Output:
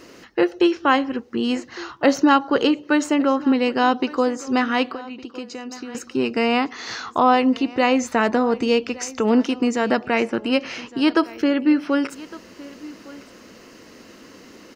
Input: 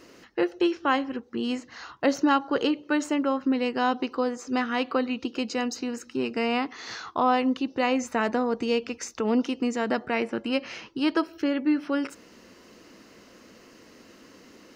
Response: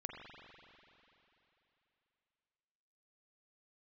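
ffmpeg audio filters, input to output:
-filter_complex "[0:a]asettb=1/sr,asplit=3[a][b][c];[a]atrim=end=4.874[d];[b]atrim=start=4.87:end=5.95,asetpts=PTS-STARTPTS,afade=t=in:d=0.004:c=qsin,afade=t=out:st=1.076:d=0.004:c=qsin,acompressor=threshold=-37dB:ratio=12[e];[c]atrim=start=5.946[f];[d][e]acrossfade=d=0.004:c1=hsin:c2=qsin[g];[g][f]acrossfade=d=0.004:c1=qsin:c2=hsin,asplit=2[h][i];[i]aecho=0:1:1160:0.1[j];[h][j]amix=inputs=2:normalize=0,volume=6.5dB"

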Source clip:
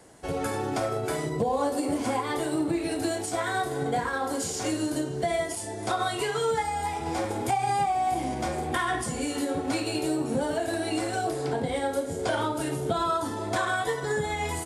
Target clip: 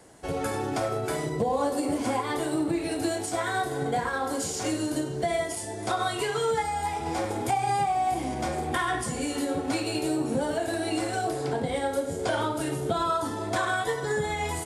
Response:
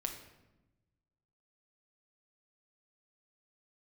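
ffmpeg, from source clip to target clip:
-filter_complex "[0:a]asplit=2[a][b];[1:a]atrim=start_sample=2205,adelay=99[c];[b][c]afir=irnorm=-1:irlink=0,volume=-16dB[d];[a][d]amix=inputs=2:normalize=0"

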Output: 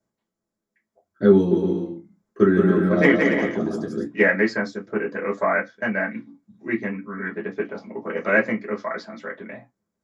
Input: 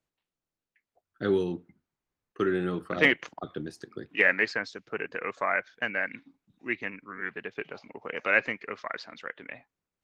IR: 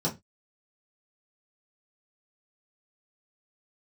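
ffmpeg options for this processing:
-filter_complex "[0:a]asettb=1/sr,asplit=3[a][b][c];[a]atrim=end=1.344[d];[b]atrim=start=1.34:end=4.04,asetpts=PTS-STARTPTS,afade=t=in:d=0.004:c=qsin,afade=t=out:st=2.696:d=0.004:c=qsin,aecho=1:1:170|280.5|352.3|399|429.4:0.631|0.398|0.251|0.158|0.1,atrim=end_sample=119070[e];[c]atrim=start=4.036[f];[d][e]acrossfade=d=0.004:c1=hsin:c2=qsin[g];[g][f]acrossfade=d=0.004:c1=qsin:c2=hsin[h];[1:a]atrim=start_sample=2205,asetrate=57330,aresample=44100[i];[h][i]afir=irnorm=-1:irlink=0,volume=-2dB"

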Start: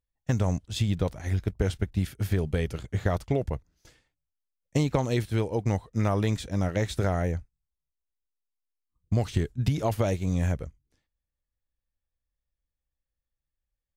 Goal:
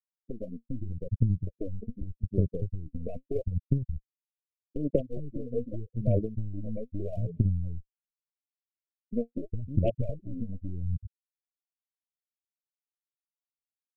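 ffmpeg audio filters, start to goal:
-filter_complex "[0:a]afftfilt=real='re*gte(hypot(re,im),0.2)':imag='im*gte(hypot(re,im),0.2)':win_size=1024:overlap=0.75,acrossover=split=220[a][b];[a]adelay=410[c];[c][b]amix=inputs=2:normalize=0,acrossover=split=820[d][e];[d]acompressor=threshold=-34dB:ratio=16[f];[f][e]amix=inputs=2:normalize=0,aeval=exprs='0.075*(cos(1*acos(clip(val(0)/0.075,-1,1)))-cos(1*PI/2))+0.015*(cos(4*acos(clip(val(0)/0.075,-1,1)))-cos(4*PI/2))':c=same,aphaser=in_gain=1:out_gain=1:delay=4.3:decay=0.73:speed=0.81:type=sinusoidal,asuperstop=centerf=1200:order=20:qfactor=0.75,volume=1dB"

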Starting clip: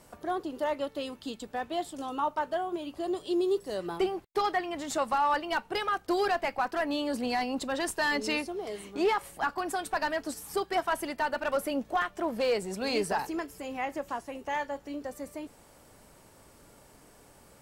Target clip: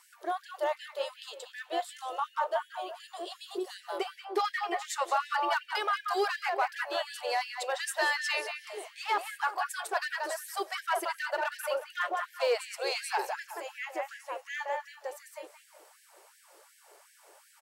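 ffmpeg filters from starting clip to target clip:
-filter_complex "[0:a]asplit=2[a][b];[b]adelay=181,lowpass=f=2.3k:p=1,volume=-4dB,asplit=2[c][d];[d]adelay=181,lowpass=f=2.3k:p=1,volume=0.35,asplit=2[e][f];[f]adelay=181,lowpass=f=2.3k:p=1,volume=0.35,asplit=2[g][h];[h]adelay=181,lowpass=f=2.3k:p=1,volume=0.35[i];[a][c][e][g][i]amix=inputs=5:normalize=0,afftfilt=real='re*gte(b*sr/1024,320*pow(1600/320,0.5+0.5*sin(2*PI*2.7*pts/sr)))':imag='im*gte(b*sr/1024,320*pow(1600/320,0.5+0.5*sin(2*PI*2.7*pts/sr)))':win_size=1024:overlap=0.75"

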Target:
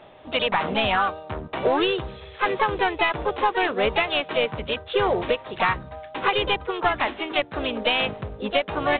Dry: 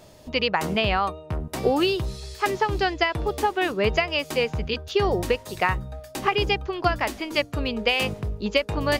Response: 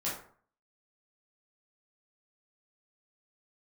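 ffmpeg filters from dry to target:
-filter_complex "[0:a]asplit=2[a][b];[b]highpass=f=720:p=1,volume=15dB,asoftclip=type=tanh:threshold=-7dB[c];[a][c]amix=inputs=2:normalize=0,lowpass=f=2.8k:p=1,volume=-6dB,asplit=2[d][e];[e]asetrate=55563,aresample=44100,atempo=0.793701,volume=-5dB[f];[d][f]amix=inputs=2:normalize=0,volume=-4dB" -ar 8000 -c:a adpcm_ima_wav

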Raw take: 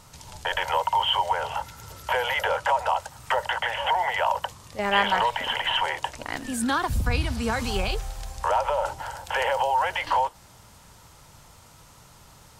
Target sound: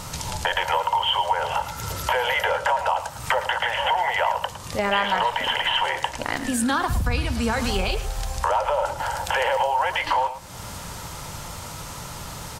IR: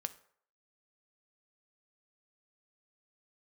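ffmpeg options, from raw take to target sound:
-filter_complex "[0:a]acompressor=threshold=-43dB:ratio=2.5,asplit=2[a][b];[b]adelay=110,highpass=300,lowpass=3.4k,asoftclip=type=hard:threshold=-34dB,volume=-11dB[c];[a][c]amix=inputs=2:normalize=0,asplit=2[d][e];[1:a]atrim=start_sample=2205[f];[e][f]afir=irnorm=-1:irlink=0,volume=7.5dB[g];[d][g]amix=inputs=2:normalize=0,volume=6dB"

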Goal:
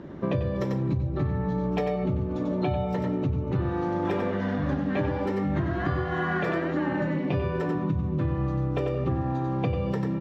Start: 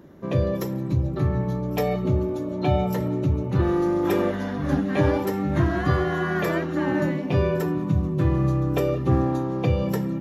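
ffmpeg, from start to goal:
-filter_complex "[0:a]lowpass=3.7k,asplit=2[a][b];[b]aecho=0:1:93:0.562[c];[a][c]amix=inputs=2:normalize=0,acompressor=threshold=-30dB:ratio=10,volume=6.5dB"

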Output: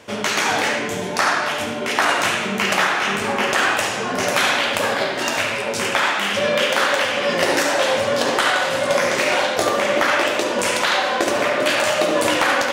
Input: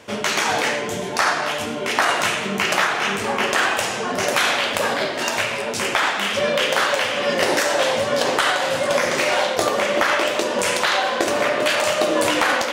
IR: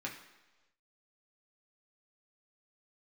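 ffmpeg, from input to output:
-filter_complex "[0:a]asplit=2[a][b];[1:a]atrim=start_sample=2205,adelay=71[c];[b][c]afir=irnorm=-1:irlink=0,volume=-6.5dB[d];[a][d]amix=inputs=2:normalize=0"

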